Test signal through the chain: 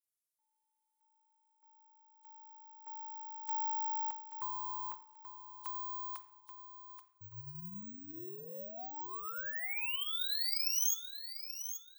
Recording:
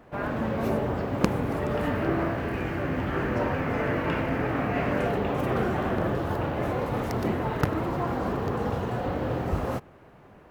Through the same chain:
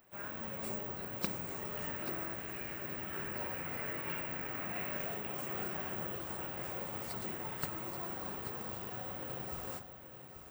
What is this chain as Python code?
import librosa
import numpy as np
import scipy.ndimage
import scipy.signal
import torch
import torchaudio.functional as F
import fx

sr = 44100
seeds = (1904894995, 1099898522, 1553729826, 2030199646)

y = fx.freq_compress(x, sr, knee_hz=3000.0, ratio=1.5)
y = librosa.effects.preemphasis(y, coef=0.9, zi=[0.0])
y = fx.echo_feedback(y, sr, ms=832, feedback_pct=25, wet_db=-10.0)
y = fx.room_shoebox(y, sr, seeds[0], volume_m3=2300.0, walls='furnished', distance_m=0.99)
y = (np.kron(y[::2], np.eye(2)[0]) * 2)[:len(y)]